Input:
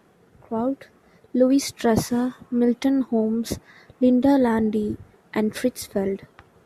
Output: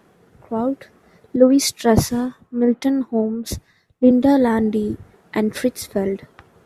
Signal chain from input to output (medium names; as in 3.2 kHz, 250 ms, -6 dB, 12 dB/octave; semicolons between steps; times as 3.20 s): 1.36–4.11 s: three bands expanded up and down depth 100%; trim +3 dB